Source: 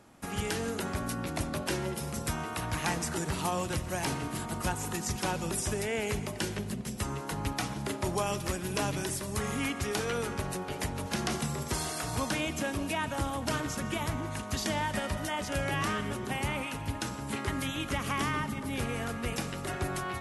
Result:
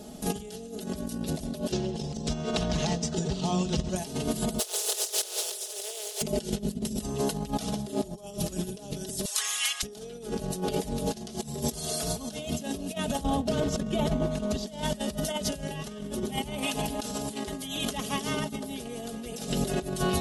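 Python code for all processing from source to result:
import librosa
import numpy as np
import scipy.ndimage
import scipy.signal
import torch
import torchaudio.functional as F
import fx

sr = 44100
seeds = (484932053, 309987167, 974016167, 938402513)

y = fx.chain(x, sr, fx.peak_eq(hz=160.0, db=2.0, octaves=0.66),
    fx.over_compress(threshold_db=-36.0, ratio=-1.0),
    fx.lowpass(hz=6500.0, slope=24), at=(1.71, 3.96))
y = fx.spec_flatten(y, sr, power=0.32, at=(4.58, 6.21), fade=0.02)
y = fx.brickwall_highpass(y, sr, low_hz=360.0, at=(4.58, 6.21), fade=0.02)
y = fx.chain(y, sr, fx.highpass(hz=1200.0, slope=24),
    fx.high_shelf(hz=9700.0, db=-6.5), at=(9.25, 9.83))
y = fx.chain(y, sr, fx.lowpass(hz=2200.0, slope=6),
    fx.over_compress(threshold_db=-37.0, ratio=-1.0), at=(13.23, 14.67))
y = fx.chain(y, sr, fx.low_shelf(hz=200.0, db=-10.0),
    fx.env_flatten(amount_pct=70), at=(16.58, 19.5))
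y = fx.band_shelf(y, sr, hz=1500.0, db=-13.5, octaves=1.7)
y = y + 0.83 * np.pad(y, (int(4.7 * sr / 1000.0), 0))[:len(y)]
y = fx.over_compress(y, sr, threshold_db=-38.0, ratio=-0.5)
y = y * 10.0 ** (7.5 / 20.0)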